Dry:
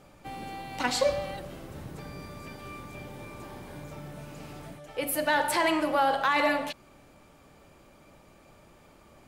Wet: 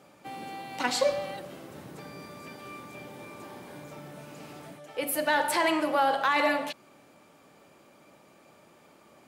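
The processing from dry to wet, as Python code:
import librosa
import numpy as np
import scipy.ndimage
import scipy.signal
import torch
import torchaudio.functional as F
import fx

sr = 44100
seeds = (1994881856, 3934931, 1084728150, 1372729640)

y = scipy.signal.sosfilt(scipy.signal.butter(2, 180.0, 'highpass', fs=sr, output='sos'), x)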